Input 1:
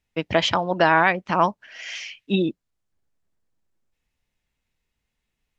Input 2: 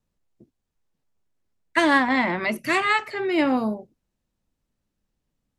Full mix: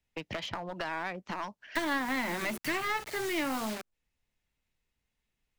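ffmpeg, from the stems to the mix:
-filter_complex "[0:a]acrossover=split=1500|4300[a][b][c];[a]acompressor=threshold=-28dB:ratio=4[d];[b]acompressor=threshold=-38dB:ratio=4[e];[c]acompressor=threshold=-46dB:ratio=4[f];[d][e][f]amix=inputs=3:normalize=0,volume=-4dB[g];[1:a]acrusher=bits=5:mix=0:aa=0.000001,volume=0dB,asplit=2[h][i];[i]apad=whole_len=246279[j];[g][j]sidechaincompress=threshold=-23dB:ratio=8:attack=16:release=891[k];[k][h]amix=inputs=2:normalize=0,acrossover=split=200|930[l][m][n];[l]acompressor=threshold=-44dB:ratio=4[o];[m]acompressor=threshold=-36dB:ratio=4[p];[n]acompressor=threshold=-31dB:ratio=4[q];[o][p][q]amix=inputs=3:normalize=0,aeval=exprs='clip(val(0),-1,0.0224)':c=same"

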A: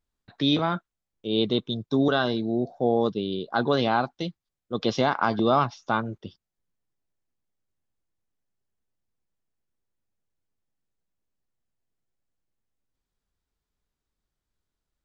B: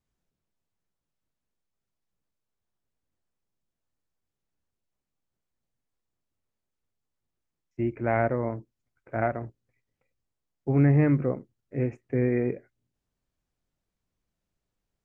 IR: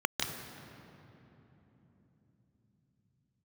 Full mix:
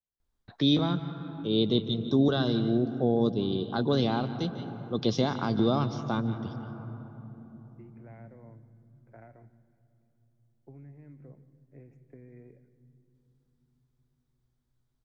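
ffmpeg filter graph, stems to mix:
-filter_complex "[0:a]lowshelf=f=110:g=9,adelay=200,volume=-1dB,asplit=2[a][b];[b]volume=-18dB[c];[1:a]acrossover=split=220|3000[d][e][f];[e]acompressor=threshold=-32dB:ratio=6[g];[d][g][f]amix=inputs=3:normalize=0,bandreject=f=1.2k:w=8.5,acompressor=threshold=-28dB:ratio=6,volume=-18dB,asplit=2[h][i];[i]volume=-19.5dB[j];[2:a]atrim=start_sample=2205[k];[c][j]amix=inputs=2:normalize=0[l];[l][k]afir=irnorm=-1:irlink=0[m];[a][h][m]amix=inputs=3:normalize=0,acrossover=split=410|3000[n][o][p];[o]acompressor=threshold=-41dB:ratio=2[q];[n][q][p]amix=inputs=3:normalize=0"

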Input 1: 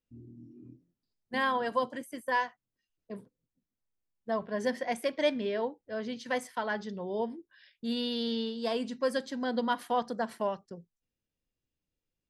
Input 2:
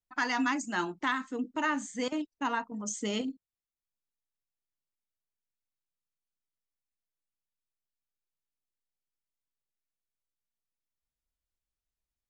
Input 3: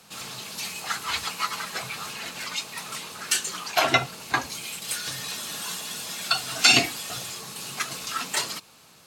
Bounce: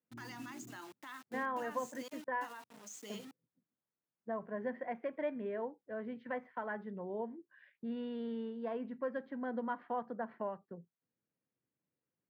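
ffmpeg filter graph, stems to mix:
-filter_complex "[0:a]lowpass=f=2k:w=0.5412,lowpass=f=2k:w=1.3066,acompressor=threshold=-51dB:ratio=1.5,volume=0.5dB[a];[1:a]bass=f=250:g=-12,treble=f=4k:g=3,acrusher=bits=6:mix=0:aa=0.000001,volume=-13.5dB,alimiter=level_in=15dB:limit=-24dB:level=0:latency=1:release=45,volume=-15dB,volume=0dB[b];[a][b]amix=inputs=2:normalize=0,highpass=f=120:w=0.5412,highpass=f=120:w=1.3066"

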